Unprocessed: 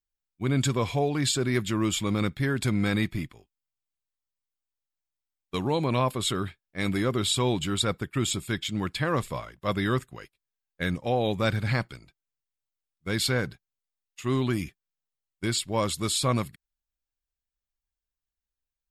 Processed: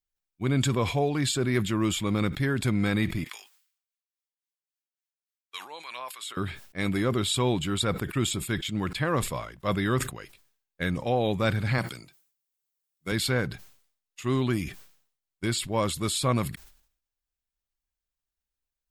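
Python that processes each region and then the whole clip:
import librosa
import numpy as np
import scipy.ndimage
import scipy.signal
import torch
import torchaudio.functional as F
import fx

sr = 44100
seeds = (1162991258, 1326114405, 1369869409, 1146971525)

y = fx.chain(x, sr, fx.highpass(hz=1400.0, slope=12),
    fx.harmonic_tremolo(hz=3.6, depth_pct=70, crossover_hz=1000.0), at=(3.24, 6.37))
y = fx.chain(y, sr, fx.highpass(hz=120.0, slope=12),
    fx.high_shelf(hz=5900.0, db=11.0), at=(11.78, 13.12))
y = fx.dynamic_eq(y, sr, hz=5600.0, q=1.2, threshold_db=-43.0, ratio=4.0, max_db=-4)
y = fx.sustainer(y, sr, db_per_s=100.0)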